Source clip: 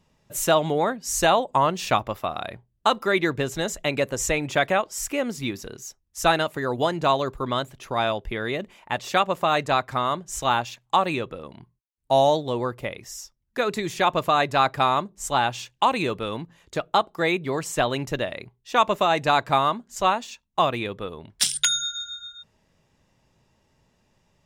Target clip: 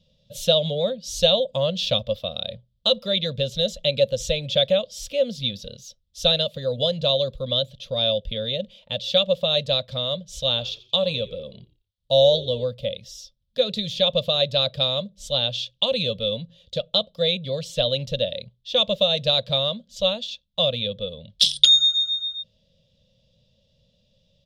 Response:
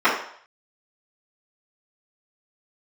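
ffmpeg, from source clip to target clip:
-filter_complex "[0:a]firequalizer=gain_entry='entry(210,0);entry(340,-27);entry(530,8);entry(800,-22);entry(2000,-17);entry(3400,11);entry(7300,-13)':delay=0.05:min_phase=1,asettb=1/sr,asplit=3[a][b][c];[a]atrim=end=10.474[d];[b]atrim=start=10.47:end=12.65,asetpts=PTS-STARTPTS,afade=t=in:d=0.004:c=qsin,afade=t=out:st=2.176:d=0.004:c=qsin,asplit=4[e][f][g][h];[f]adelay=87,afreqshift=-72,volume=-19dB[i];[g]adelay=174,afreqshift=-144,volume=-28.4dB[j];[h]adelay=261,afreqshift=-216,volume=-37.7dB[k];[e][i][j][k]amix=inputs=4:normalize=0,atrim=end_sample=96138[l];[c]atrim=start=12.646[m];[d][l]acrossfade=d=0.004:c1=hsin:c2=qsin[n];[n][m]acrossfade=d=0.004:c1=qsin:c2=hsin,volume=2dB"

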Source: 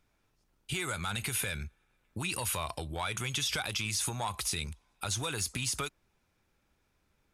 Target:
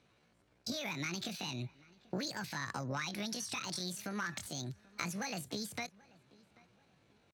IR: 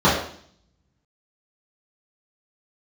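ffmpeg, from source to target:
-filter_complex "[0:a]highpass=62,acompressor=threshold=-41dB:ratio=6,asetrate=74167,aresample=44100,atempo=0.594604,adynamicsmooth=sensitivity=7:basefreq=6.5k,asplit=2[a][b];[b]adelay=786,lowpass=f=2.3k:p=1,volume=-23dB,asplit=2[c][d];[d]adelay=786,lowpass=f=2.3k:p=1,volume=0.38,asplit=2[e][f];[f]adelay=786,lowpass=f=2.3k:p=1,volume=0.38[g];[c][e][g]amix=inputs=3:normalize=0[h];[a][h]amix=inputs=2:normalize=0,volume=6.5dB"

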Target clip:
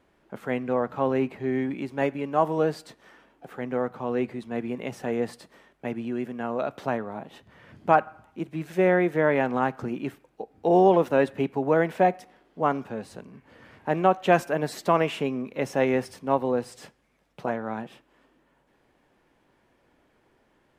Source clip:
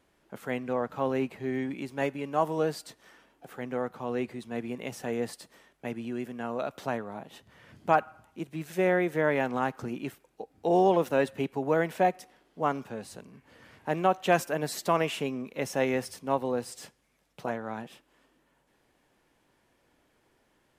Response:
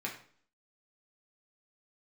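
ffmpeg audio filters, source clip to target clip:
-filter_complex "[0:a]highshelf=f=4k:g=-11,asplit=2[a][b];[1:a]atrim=start_sample=2205[c];[b][c]afir=irnorm=-1:irlink=0,volume=-21.5dB[d];[a][d]amix=inputs=2:normalize=0,volume=4dB"

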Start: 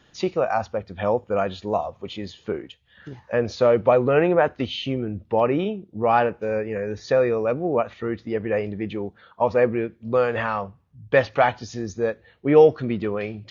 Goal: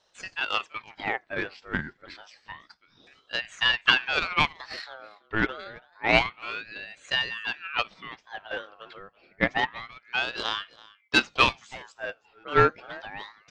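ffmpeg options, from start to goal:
-filter_complex "[0:a]acrossover=split=510 5400:gain=0.112 1 0.251[a][b][c];[a][b][c]amix=inputs=3:normalize=0,aeval=exprs='0.473*(cos(1*acos(clip(val(0)/0.473,-1,1)))-cos(1*PI/2))+0.0473*(cos(2*acos(clip(val(0)/0.473,-1,1)))-cos(2*PI/2))+0.0668*(cos(3*acos(clip(val(0)/0.473,-1,1)))-cos(3*PI/2))+0.0168*(cos(7*acos(clip(val(0)/0.473,-1,1)))-cos(7*PI/2))':c=same,aecho=1:1:332:0.0794,aeval=exprs='val(0)*sin(2*PI*1600*n/s+1600*0.45/0.28*sin(2*PI*0.28*n/s))':c=same,volume=5.5dB"

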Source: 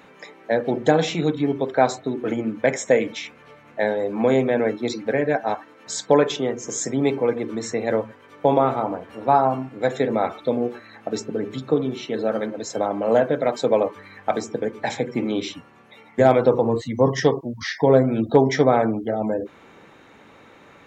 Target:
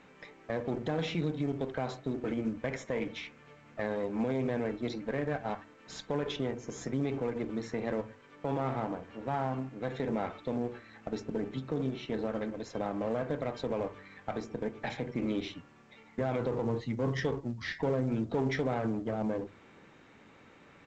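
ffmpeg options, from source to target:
-filter_complex "[0:a]aeval=exprs='if(lt(val(0),0),0.447*val(0),val(0))':c=same,lowpass=2.8k,equalizer=f=770:w=0.37:g=-8,bandreject=f=50:t=h:w=6,bandreject=f=100:t=h:w=6,asplit=2[a][b];[b]adelay=68,lowpass=f=920:p=1,volume=-20dB,asplit=2[c][d];[d]adelay=68,lowpass=f=920:p=1,volume=0.35,asplit=2[e][f];[f]adelay=68,lowpass=f=920:p=1,volume=0.35[g];[a][c][e][g]amix=inputs=4:normalize=0,alimiter=limit=-20.5dB:level=0:latency=1:release=59,highpass=f=67:p=1" -ar 16000 -c:a pcm_alaw

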